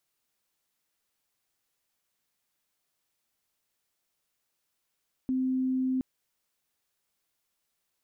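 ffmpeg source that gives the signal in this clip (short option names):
-f lavfi -i "aevalsrc='0.0562*sin(2*PI*259*t)':d=0.72:s=44100"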